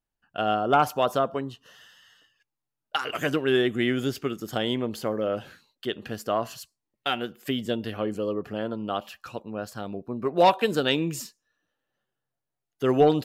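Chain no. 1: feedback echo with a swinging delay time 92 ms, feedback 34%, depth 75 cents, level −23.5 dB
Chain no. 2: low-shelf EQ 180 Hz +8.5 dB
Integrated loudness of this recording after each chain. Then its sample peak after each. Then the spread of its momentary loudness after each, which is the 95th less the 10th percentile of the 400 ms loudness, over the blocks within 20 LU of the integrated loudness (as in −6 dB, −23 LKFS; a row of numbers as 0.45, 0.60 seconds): −27.0, −25.5 LKFS; −10.0, −8.0 dBFS; 15, 14 LU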